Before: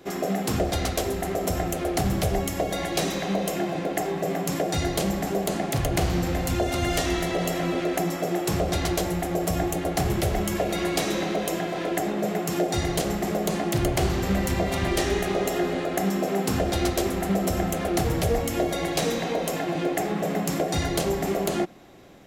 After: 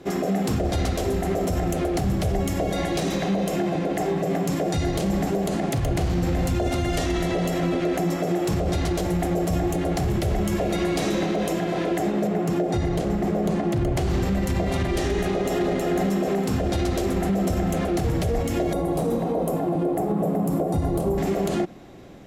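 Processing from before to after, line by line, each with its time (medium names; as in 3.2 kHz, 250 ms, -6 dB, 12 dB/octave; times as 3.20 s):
12.27–13.97 s: treble shelf 2.4 kHz -9 dB
15.28–15.77 s: echo throw 320 ms, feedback 35%, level -0.5 dB
18.73–21.18 s: high-order bell 3.3 kHz -14.5 dB 2.5 oct
whole clip: Bessel low-pass 12 kHz, order 2; bass shelf 470 Hz +7 dB; peak limiter -16.5 dBFS; trim +1 dB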